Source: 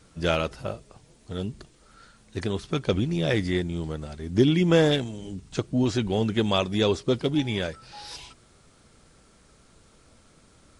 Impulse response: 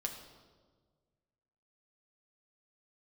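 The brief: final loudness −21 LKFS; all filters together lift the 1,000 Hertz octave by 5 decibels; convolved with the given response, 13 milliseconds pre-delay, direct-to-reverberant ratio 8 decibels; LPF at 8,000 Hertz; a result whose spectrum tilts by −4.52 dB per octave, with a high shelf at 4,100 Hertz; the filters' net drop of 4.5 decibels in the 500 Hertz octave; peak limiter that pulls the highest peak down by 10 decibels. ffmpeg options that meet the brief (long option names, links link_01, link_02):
-filter_complex "[0:a]lowpass=8000,equalizer=frequency=500:width_type=o:gain=-8,equalizer=frequency=1000:width_type=o:gain=8.5,highshelf=frequency=4100:gain=9,alimiter=limit=-16.5dB:level=0:latency=1,asplit=2[link_01][link_02];[1:a]atrim=start_sample=2205,adelay=13[link_03];[link_02][link_03]afir=irnorm=-1:irlink=0,volume=-8.5dB[link_04];[link_01][link_04]amix=inputs=2:normalize=0,volume=7.5dB"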